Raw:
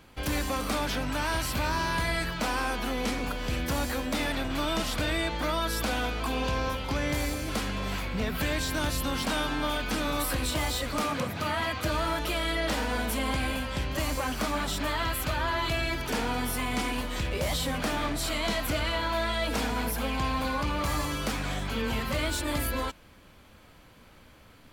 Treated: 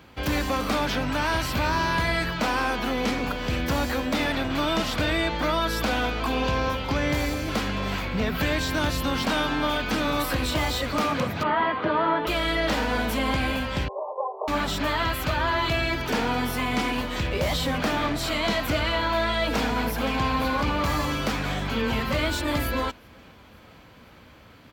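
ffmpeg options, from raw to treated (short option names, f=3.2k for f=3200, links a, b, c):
-filter_complex "[0:a]asettb=1/sr,asplit=3[a][b][c];[a]atrim=end=11.434[d];[b]atrim=start=11.43:end=12.27,asetpts=PTS-STARTPTS,afade=t=in:d=0.004:c=qsin,afade=t=out:st=0.836:d=0.004:c=qsin,highpass=f=120:w=0.5412,highpass=f=120:w=1.3066,equalizer=f=120:t=q:w=4:g=-10,equalizer=f=410:t=q:w=4:g=8,equalizer=f=990:t=q:w=4:g=6,equalizer=f=2.5k:t=q:w=4:g=-7,lowpass=f=3k:w=0.5412,lowpass=f=3k:w=1.3066[e];[c]atrim=start=12.266[f];[d][e]acrossfade=d=0.004:c1=hsin:c2=qsin[g];[g][f]acrossfade=d=0.004:c1=qsin:c2=hsin,asettb=1/sr,asplit=3[h][i][j];[h]atrim=end=13.884[k];[i]atrim=start=13.88:end=14.48,asetpts=PTS-STARTPTS,afade=t=in:d=0.004:c=qsin,afade=t=out:st=0.596:d=0.004:c=qsin,asuperpass=centerf=640:order=20:qfactor=0.92[l];[j]atrim=start=14.476[m];[k][l]acrossfade=d=0.004:c1=hsin:c2=qsin[n];[n][m]acrossfade=d=0.004:c1=qsin:c2=hsin,asplit=2[o][p];[p]afade=t=in:st=19.48:d=0.01,afade=t=out:st=20.19:d=0.01,aecho=0:1:520|1040|1560|2080|2600|3120|3640|4160:0.281838|0.183195|0.119077|0.0773998|0.0503099|0.0327014|0.0212559|0.0138164[q];[o][q]amix=inputs=2:normalize=0,highpass=55,equalizer=f=10k:t=o:w=1:g=-10.5,volume=5dB"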